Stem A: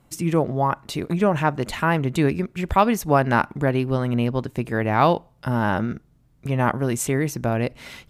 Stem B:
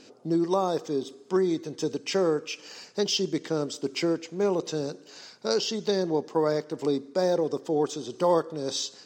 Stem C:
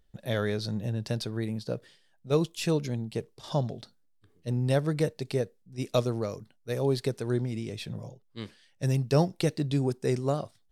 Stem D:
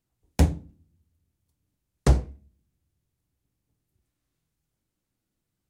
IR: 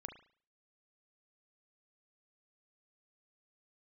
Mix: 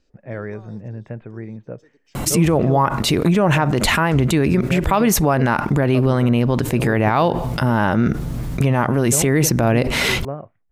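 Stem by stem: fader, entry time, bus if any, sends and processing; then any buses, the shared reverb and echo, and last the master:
+2.0 dB, 2.15 s, no send, envelope flattener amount 70%
−20.0 dB, 0.00 s, no send, automatic ducking −8 dB, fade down 1.95 s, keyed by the third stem
−0.5 dB, 0.00 s, no send, Butterworth low-pass 2,400 Hz 48 dB per octave
−0.5 dB, 2.05 s, no send, brickwall limiter −22.5 dBFS, peak gain reduction 15.5 dB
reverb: not used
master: brickwall limiter −6.5 dBFS, peak gain reduction 8.5 dB

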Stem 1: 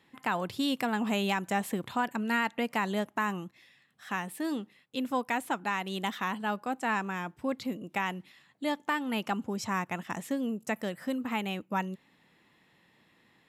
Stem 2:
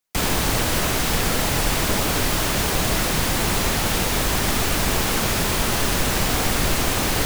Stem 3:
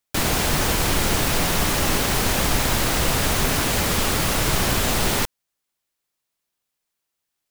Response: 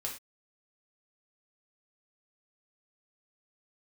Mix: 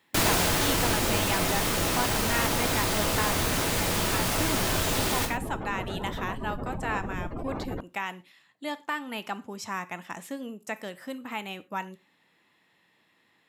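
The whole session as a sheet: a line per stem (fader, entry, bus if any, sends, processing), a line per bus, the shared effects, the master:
−2.0 dB, 0.00 s, send −10.5 dB, low-shelf EQ 440 Hz −6 dB
−8.5 dB, 0.55 s, send −19 dB, gate on every frequency bin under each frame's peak −15 dB strong; low-pass filter 1,200 Hz 12 dB per octave
−2.5 dB, 0.00 s, send −5.5 dB, automatic ducking −15 dB, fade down 1.20 s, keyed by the first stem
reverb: on, pre-delay 3 ms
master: low-shelf EQ 86 Hz −7 dB

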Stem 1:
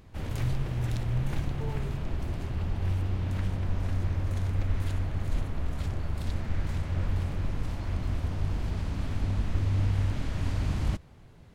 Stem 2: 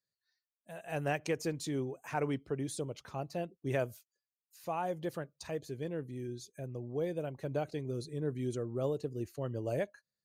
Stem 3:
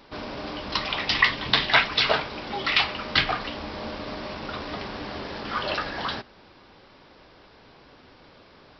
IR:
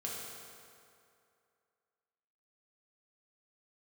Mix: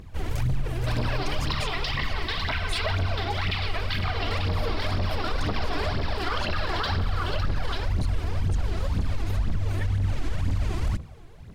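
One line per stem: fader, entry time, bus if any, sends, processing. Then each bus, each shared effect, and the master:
−0.5 dB, 0.00 s, send −21 dB, no echo send, wavefolder on the positive side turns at −22 dBFS
+2.5 dB, 0.00 s, no send, no echo send, high-pass filter 1,300 Hz
−4.5 dB, 0.75 s, send −4 dB, echo send −7 dB, speech leveller within 5 dB 0.5 s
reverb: on, RT60 2.5 s, pre-delay 3 ms
echo: single-tap delay 891 ms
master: speech leveller within 3 dB 0.5 s; phase shifter 2 Hz, delay 3.1 ms, feedback 64%; brickwall limiter −17.5 dBFS, peak gain reduction 11.5 dB

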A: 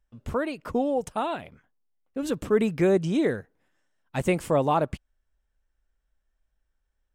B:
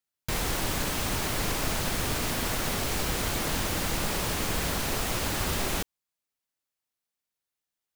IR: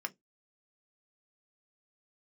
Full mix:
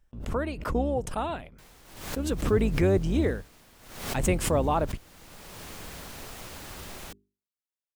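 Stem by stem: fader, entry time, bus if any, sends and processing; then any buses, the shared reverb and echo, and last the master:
−3.0 dB, 0.00 s, no send, sub-octave generator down 2 octaves, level +1 dB; noise gate −54 dBFS, range −30 dB
−12.5 dB, 1.30 s, no send, mains-hum notches 50/100/150/200/250/300/350/400 Hz; automatic ducking −14 dB, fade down 1.95 s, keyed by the first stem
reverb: not used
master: background raised ahead of every attack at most 75 dB per second

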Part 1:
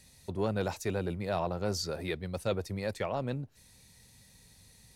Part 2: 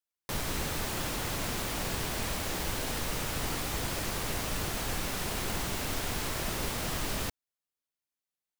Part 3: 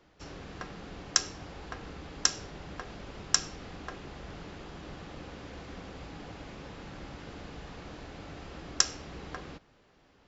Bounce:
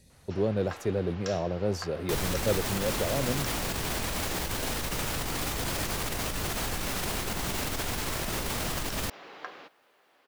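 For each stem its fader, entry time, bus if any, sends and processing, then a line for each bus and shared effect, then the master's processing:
−4.5 dB, 0.00 s, no bus, no send, low shelf with overshoot 710 Hz +7.5 dB, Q 1.5
+1.0 dB, 1.80 s, bus A, no send, automatic gain control gain up to 9 dB
−1.5 dB, 0.10 s, bus A, no send, high-pass filter 540 Hz 12 dB per octave; low-pass filter 4,100 Hz 12 dB per octave
bus A: 0.0 dB, compressor whose output falls as the input rises −26 dBFS, ratio −0.5; brickwall limiter −21.5 dBFS, peak gain reduction 13.5 dB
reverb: not used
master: no processing

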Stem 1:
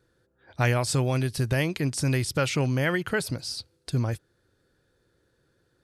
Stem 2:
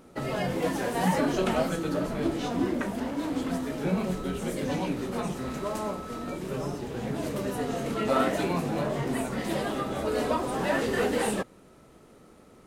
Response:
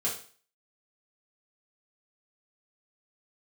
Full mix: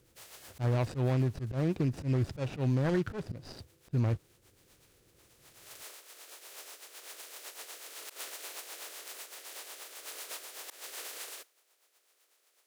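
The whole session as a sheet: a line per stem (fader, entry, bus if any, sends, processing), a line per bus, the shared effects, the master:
+2.5 dB, 0.00 s, no send, running median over 41 samples; low-pass filter 7,900 Hz
−13.0 dB, 0.00 s, no send, compressing power law on the bin magnitudes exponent 0.14; inverse Chebyshev high-pass filter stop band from 190 Hz, stop band 40 dB; rotating-speaker cabinet horn 8 Hz; automatic ducking −20 dB, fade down 1.20 s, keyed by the first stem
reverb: not used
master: volume swells 159 ms; brickwall limiter −21 dBFS, peak gain reduction 6 dB

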